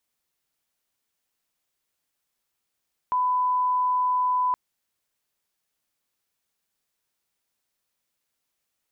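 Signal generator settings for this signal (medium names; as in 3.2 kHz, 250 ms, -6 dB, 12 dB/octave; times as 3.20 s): line-up tone -20 dBFS 1.42 s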